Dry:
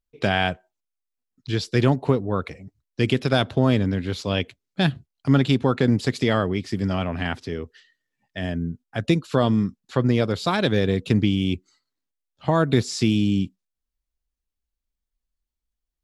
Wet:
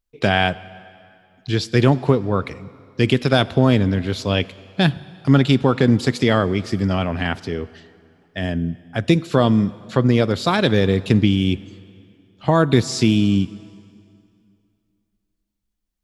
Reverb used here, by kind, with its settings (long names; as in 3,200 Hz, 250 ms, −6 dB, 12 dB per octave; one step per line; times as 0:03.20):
dense smooth reverb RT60 2.5 s, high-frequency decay 0.85×, DRR 18 dB
level +4 dB